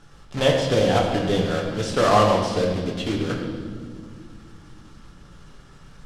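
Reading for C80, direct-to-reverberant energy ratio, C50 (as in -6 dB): 4.5 dB, -1.0 dB, 3.5 dB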